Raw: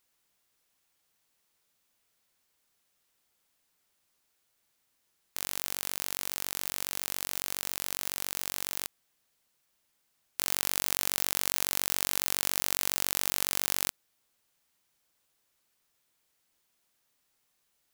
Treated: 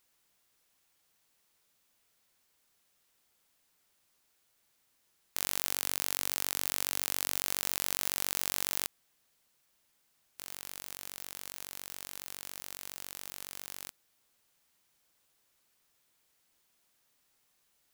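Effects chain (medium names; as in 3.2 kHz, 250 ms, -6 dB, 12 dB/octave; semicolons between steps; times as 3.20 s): 5.67–7.41 s: bass shelf 96 Hz -10 dB; in parallel at +2.5 dB: level held to a coarse grid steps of 18 dB; on the sum: wavefolder -1 dBFS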